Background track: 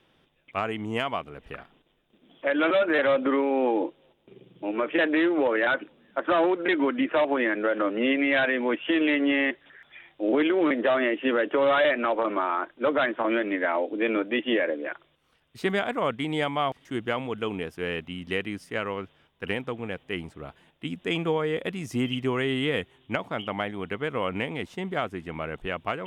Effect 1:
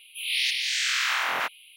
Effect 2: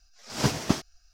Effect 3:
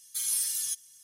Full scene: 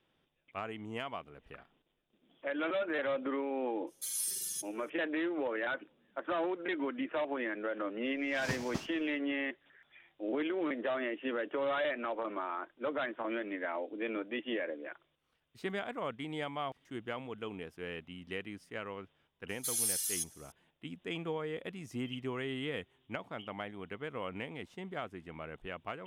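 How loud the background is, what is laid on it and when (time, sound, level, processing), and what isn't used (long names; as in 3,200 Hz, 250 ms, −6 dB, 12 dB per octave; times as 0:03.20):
background track −11.5 dB
0:03.87: mix in 3 −7 dB + downward expander −50 dBFS, range −9 dB
0:08.05: mix in 2 −13.5 dB + repeating echo 101 ms, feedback 59%, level −23 dB
0:19.49: mix in 3 −4 dB
not used: 1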